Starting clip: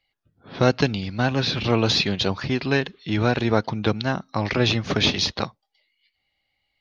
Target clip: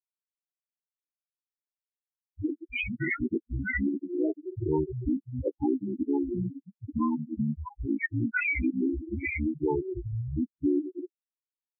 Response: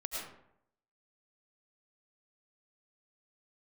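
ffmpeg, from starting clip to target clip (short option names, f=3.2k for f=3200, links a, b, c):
-filter_complex "[0:a]areverse,equalizer=f=550:t=o:w=1:g=8.5,acompressor=threshold=-17dB:ratio=20,asplit=2[a][b];[1:a]atrim=start_sample=2205[c];[b][c]afir=irnorm=-1:irlink=0,volume=-8dB[d];[a][d]amix=inputs=2:normalize=0,acrossover=split=470|3000[e][f][g];[e]acompressor=threshold=-27dB:ratio=5[h];[h][f][g]amix=inputs=3:normalize=0,asplit=2[i][j];[j]adelay=193,lowpass=f=3.1k:p=1,volume=-17.5dB,asplit=2[k][l];[l]adelay=193,lowpass=f=3.1k:p=1,volume=0.3,asplit=2[m][n];[n]adelay=193,lowpass=f=3.1k:p=1,volume=0.3[o];[i][k][m][o]amix=inputs=4:normalize=0,asoftclip=type=tanh:threshold=-18.5dB,afftfilt=real='re*gte(hypot(re,im),0.224)':imag='im*gte(hypot(re,im),0.224)':win_size=1024:overlap=0.75,afftdn=nr=20:nf=-34,asetrate=25442,aresample=44100,volume=1dB"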